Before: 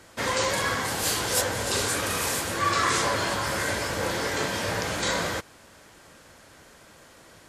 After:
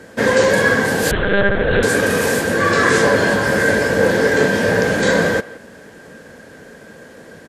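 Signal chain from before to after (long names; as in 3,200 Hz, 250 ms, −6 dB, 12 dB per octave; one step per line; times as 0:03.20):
hollow resonant body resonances 220/440/1,600 Hz, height 15 dB, ringing for 20 ms
far-end echo of a speakerphone 170 ms, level −18 dB
0:01.11–0:01.83: one-pitch LPC vocoder at 8 kHz 200 Hz
level +2.5 dB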